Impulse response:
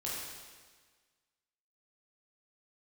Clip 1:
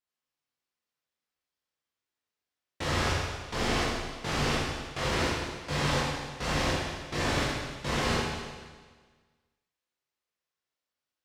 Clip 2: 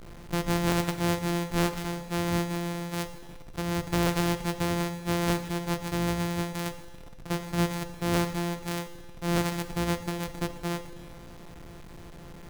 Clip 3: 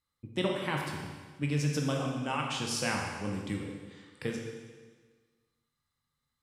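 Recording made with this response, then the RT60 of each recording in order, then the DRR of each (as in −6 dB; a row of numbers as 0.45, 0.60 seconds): 1; 1.5, 1.5, 1.5 seconds; −6.5, 9.5, 0.0 decibels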